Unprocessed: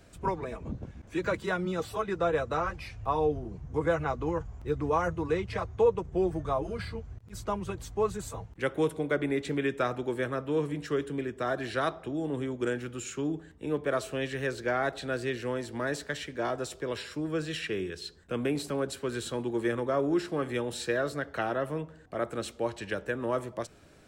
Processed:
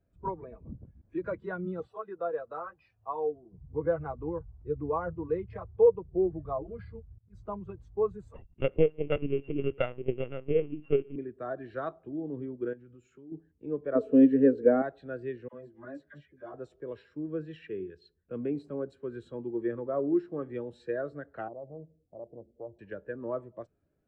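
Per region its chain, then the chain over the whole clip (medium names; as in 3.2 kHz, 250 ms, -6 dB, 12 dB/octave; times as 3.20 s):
1.87–3.53 s: high-pass 430 Hz 6 dB/octave + band-stop 2.2 kHz, Q 6.5
8.34–11.16 s: sorted samples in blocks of 16 samples + LPC vocoder at 8 kHz pitch kept + transient shaper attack +7 dB, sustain 0 dB
12.73–13.32 s: doubling 16 ms -13.5 dB + compression 5:1, threshold -39 dBFS
13.95–14.82 s: small resonant body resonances 270/450 Hz, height 17 dB, ringing for 55 ms + tape noise reduction on one side only encoder only
15.48–16.54 s: comb of notches 450 Hz + phase dispersion lows, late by 48 ms, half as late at 910 Hz + three-phase chorus
21.48–22.79 s: compression 1.5:1, threshold -36 dBFS + steep low-pass 740 Hz + loudspeaker Doppler distortion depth 0.33 ms
whole clip: low-pass 2 kHz 6 dB/octave; spectral contrast expander 1.5:1; trim -3 dB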